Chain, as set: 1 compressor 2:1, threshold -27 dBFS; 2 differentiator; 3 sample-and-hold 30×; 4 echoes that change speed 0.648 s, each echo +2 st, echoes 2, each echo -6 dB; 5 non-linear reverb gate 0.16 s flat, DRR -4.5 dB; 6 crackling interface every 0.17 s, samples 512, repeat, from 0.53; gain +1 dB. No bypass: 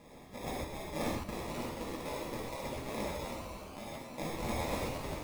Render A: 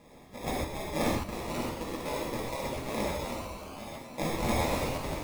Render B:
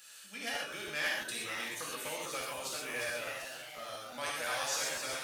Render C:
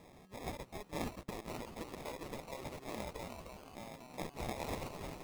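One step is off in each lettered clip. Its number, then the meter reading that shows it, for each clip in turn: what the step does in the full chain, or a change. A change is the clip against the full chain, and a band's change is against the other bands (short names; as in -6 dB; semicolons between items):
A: 1, mean gain reduction 3.5 dB; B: 3, 125 Hz band -18.0 dB; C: 5, crest factor change +2.0 dB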